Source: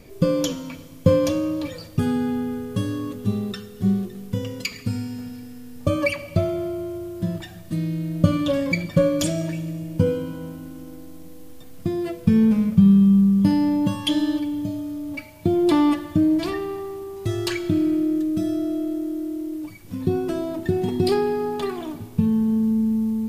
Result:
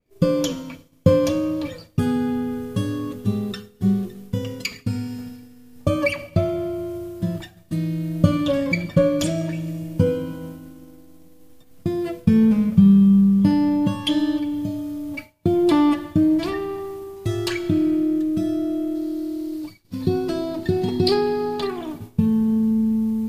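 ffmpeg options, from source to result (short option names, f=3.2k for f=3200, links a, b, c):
-filter_complex "[0:a]asettb=1/sr,asplit=3[a][b][c];[a]atrim=end=18.954[d];[b]atrim=start=18.95:end=21.67,asetpts=PTS-STARTPTS,afade=t=in:d=0.004:c=qsin,afade=t=out:st=2.716:d=0.004:c=qsin,equalizer=f=4.4k:t=o:w=0.49:g=11[e];[c]atrim=start=21.666[f];[d][e]acrossfade=d=0.004:c1=hsin:c2=qsin[g];[g][f]acrossfade=d=0.004:c1=qsin:c2=hsin,agate=range=-33dB:threshold=-31dB:ratio=3:detection=peak,adynamicequalizer=threshold=0.00562:dfrequency=4500:dqfactor=0.7:tfrequency=4500:tqfactor=0.7:attack=5:release=100:ratio=0.375:range=2.5:mode=cutabove:tftype=highshelf,volume=1dB"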